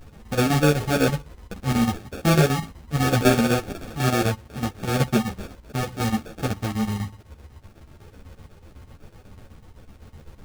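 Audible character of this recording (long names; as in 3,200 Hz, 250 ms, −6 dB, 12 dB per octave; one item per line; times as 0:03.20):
phaser sweep stages 2, 1 Hz, lowest notch 610–1,300 Hz
aliases and images of a low sample rate 1,000 Hz, jitter 0%
chopped level 8 Hz, depth 65%, duty 70%
a shimmering, thickened sound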